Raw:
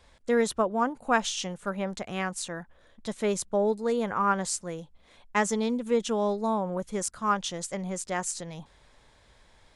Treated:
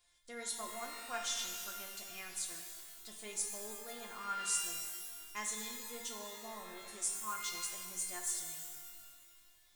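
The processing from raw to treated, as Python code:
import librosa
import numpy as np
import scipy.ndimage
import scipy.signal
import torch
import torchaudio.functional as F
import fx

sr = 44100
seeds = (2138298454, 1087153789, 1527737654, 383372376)

y = scipy.signal.lfilter([1.0, -0.9], [1.0], x)
y = fx.comb_fb(y, sr, f0_hz=350.0, decay_s=0.24, harmonics='all', damping=0.0, mix_pct=90)
y = fx.rev_shimmer(y, sr, seeds[0], rt60_s=1.9, semitones=12, shimmer_db=-2, drr_db=3.0)
y = F.gain(torch.from_numpy(y), 9.0).numpy()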